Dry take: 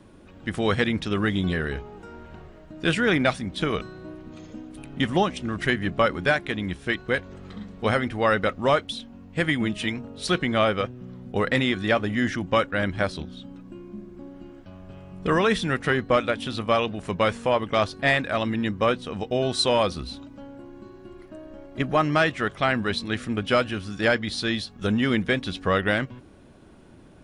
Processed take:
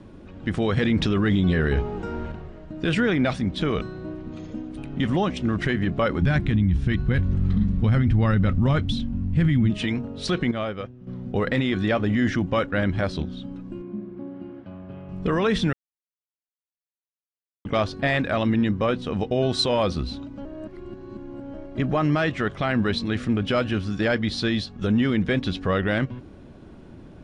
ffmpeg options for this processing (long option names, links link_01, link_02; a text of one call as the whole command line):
ffmpeg -i in.wav -filter_complex "[0:a]asettb=1/sr,asplit=3[link_01][link_02][link_03];[link_01]atrim=end=0.774[link_04];[link_02]atrim=start=0.77:end=2.32,asetpts=PTS-STARTPTS,afade=type=in:duration=0.004:curve=qsin,afade=type=out:start_time=1.546:duration=0.004:curve=qsin,acontrast=65[link_05];[link_03]atrim=start=2.316[link_06];[link_04][link_05]acrossfade=duration=0.004:curve1=hsin:curve2=qsin[link_07];[link_07][link_06]acrossfade=duration=0.004:curve1=qsin:curve2=hsin,asplit=3[link_08][link_09][link_10];[link_08]afade=type=out:start_time=6.21:duration=0.02[link_11];[link_09]asubboost=boost=8.5:cutoff=170,afade=type=in:start_time=6.21:duration=0.02,afade=type=out:start_time=9.69:duration=0.02[link_12];[link_10]afade=type=in:start_time=9.69:duration=0.02[link_13];[link_11][link_12][link_13]amix=inputs=3:normalize=0,asettb=1/sr,asplit=3[link_14][link_15][link_16];[link_14]atrim=end=13.824[link_17];[link_15]atrim=start=13.82:end=15.09,asetpts=PTS-STARTPTS,afade=type=in:duration=0.004:curve=qsin,afade=type=out:start_time=1.266:duration=0.004:curve=qsin,highpass=120,lowpass=2900[link_18];[link_16]atrim=start=15.086[link_19];[link_17][link_18]acrossfade=duration=0.004:curve1=hsin:curve2=qsin[link_20];[link_20][link_19]acrossfade=duration=0.004:curve1=qsin:curve2=hsin,asplit=7[link_21][link_22][link_23][link_24][link_25][link_26][link_27];[link_21]atrim=end=10.512[link_28];[link_22]atrim=start=10.508:end=11.072,asetpts=PTS-STARTPTS,volume=-11dB[link_29];[link_23]atrim=start=11.068:end=15.73,asetpts=PTS-STARTPTS,afade=type=out:start_time=4.658:duration=0.004:curve=hsin[link_30];[link_24]atrim=start=15.73:end=17.65,asetpts=PTS-STARTPTS,volume=0[link_31];[link_25]atrim=start=17.65:end=20.452,asetpts=PTS-STARTPTS,afade=type=in:duration=0.004:curve=hsin[link_32];[link_26]atrim=start=20.448:end=21.542,asetpts=PTS-STARTPTS,areverse[link_33];[link_27]atrim=start=21.538[link_34];[link_28][link_29]acrossfade=duration=0.004:curve1=hsin:curve2=hsin[link_35];[link_30][link_31][link_32]concat=n=3:v=0:a=1[link_36];[link_35][link_36]acrossfade=duration=0.004:curve1=hsin:curve2=hsin[link_37];[link_37][link_33]acrossfade=duration=0.004:curve1=hsin:curve2=hsin[link_38];[link_38][link_34]acrossfade=duration=0.004:curve1=hsin:curve2=hsin,lowpass=6300,lowshelf=frequency=490:gain=6.5,alimiter=limit=-14dB:level=0:latency=1:release=36,volume=1dB" out.wav